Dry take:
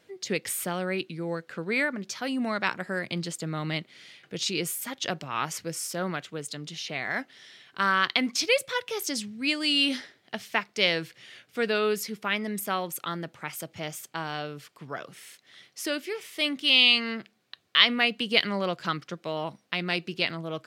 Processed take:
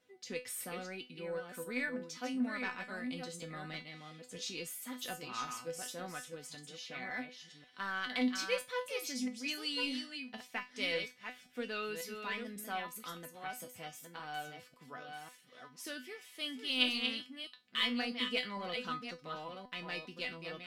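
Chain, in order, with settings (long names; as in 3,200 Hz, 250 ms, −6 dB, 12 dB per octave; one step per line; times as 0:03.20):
delay that plays each chunk backwards 546 ms, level −6 dB
in parallel at −5.5 dB: soft clipping −18.5 dBFS, distortion −11 dB
on the sum: tuned comb filter 250 Hz, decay 0.23 s, harmonics all, mix 90%
level −4 dB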